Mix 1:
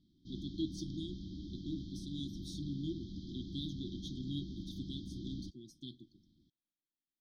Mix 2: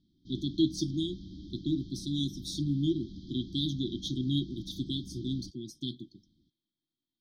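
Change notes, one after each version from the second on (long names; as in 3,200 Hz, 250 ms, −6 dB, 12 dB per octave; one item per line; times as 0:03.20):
speech +11.5 dB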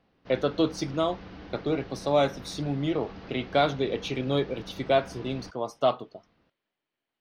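master: remove linear-phase brick-wall band-stop 370–3,100 Hz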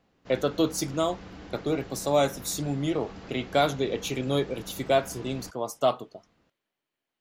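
master: remove Savitzky-Golay smoothing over 15 samples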